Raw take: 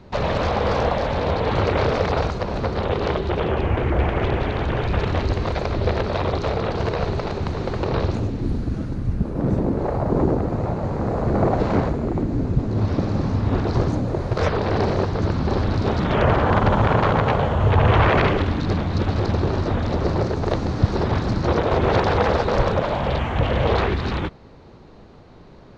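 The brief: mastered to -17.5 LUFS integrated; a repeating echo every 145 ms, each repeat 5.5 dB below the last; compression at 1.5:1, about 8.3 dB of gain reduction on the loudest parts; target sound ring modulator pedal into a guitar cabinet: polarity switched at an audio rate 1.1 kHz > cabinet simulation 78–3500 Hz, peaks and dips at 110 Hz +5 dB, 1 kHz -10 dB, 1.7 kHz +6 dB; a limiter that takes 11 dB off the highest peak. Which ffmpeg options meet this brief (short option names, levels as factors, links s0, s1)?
-af "acompressor=threshold=0.0178:ratio=1.5,alimiter=limit=0.0794:level=0:latency=1,aecho=1:1:145|290|435|580|725|870|1015:0.531|0.281|0.149|0.079|0.0419|0.0222|0.0118,aeval=exprs='val(0)*sgn(sin(2*PI*1100*n/s))':c=same,highpass=78,equalizer=f=110:t=q:w=4:g=5,equalizer=f=1000:t=q:w=4:g=-10,equalizer=f=1700:t=q:w=4:g=6,lowpass=f=3500:w=0.5412,lowpass=f=3500:w=1.3066,volume=3.76"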